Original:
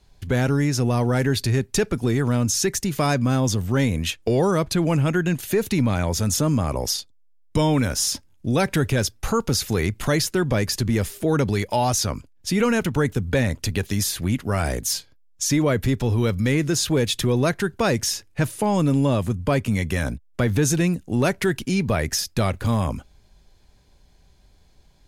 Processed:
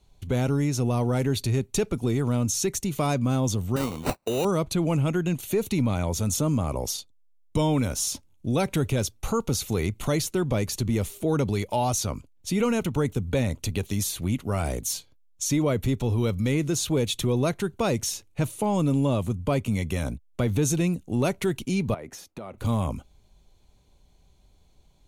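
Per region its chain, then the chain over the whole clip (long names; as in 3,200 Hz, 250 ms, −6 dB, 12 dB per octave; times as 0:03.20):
0:03.76–0:04.45: high-pass filter 340 Hz 6 dB per octave + high-shelf EQ 5,000 Hz +9 dB + sample-rate reduction 3,300 Hz
0:21.94–0:22.58: three-way crossover with the lows and the highs turned down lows −17 dB, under 190 Hz, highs −14 dB, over 2,100 Hz + downward compressor 10 to 1, threshold −29 dBFS
whole clip: parametric band 1,700 Hz −11 dB 0.4 octaves; notch filter 5,000 Hz, Q 6; level −3.5 dB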